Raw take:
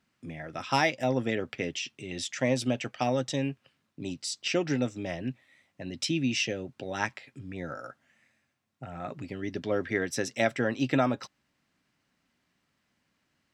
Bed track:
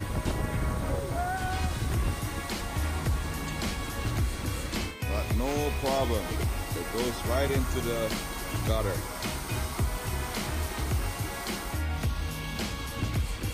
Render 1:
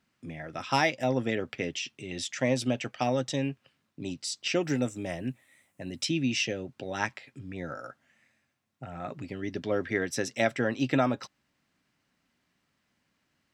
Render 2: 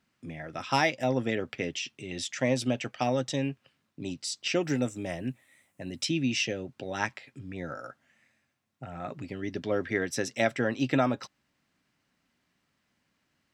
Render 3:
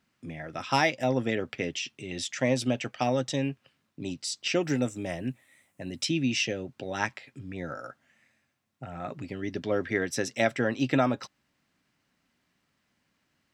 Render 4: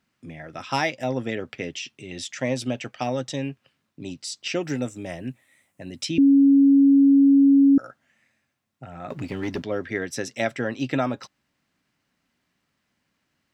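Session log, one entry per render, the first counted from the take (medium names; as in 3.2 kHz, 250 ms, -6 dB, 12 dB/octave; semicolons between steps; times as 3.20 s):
4.63–6.02 s: resonant high shelf 6.8 kHz +11 dB, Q 1.5
no audible change
trim +1 dB
6.18–7.78 s: bleep 277 Hz -11.5 dBFS; 9.10–9.64 s: waveshaping leveller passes 2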